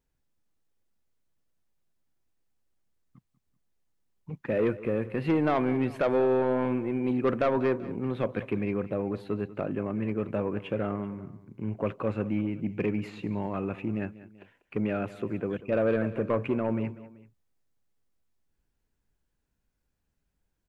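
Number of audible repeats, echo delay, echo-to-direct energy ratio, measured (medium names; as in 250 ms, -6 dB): 2, 192 ms, -16.0 dB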